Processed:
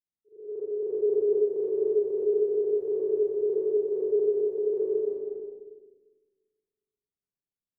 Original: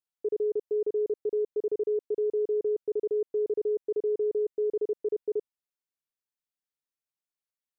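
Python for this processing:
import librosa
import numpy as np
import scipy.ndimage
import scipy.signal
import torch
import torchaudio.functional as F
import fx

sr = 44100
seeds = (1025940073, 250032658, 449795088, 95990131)

y = fx.auto_swell(x, sr, attack_ms=770.0)
y = fx.rev_schroeder(y, sr, rt60_s=1.8, comb_ms=30, drr_db=-8.0)
y = fx.env_lowpass(y, sr, base_hz=310.0, full_db=-24.0)
y = F.gain(torch.from_numpy(y), -1.0).numpy()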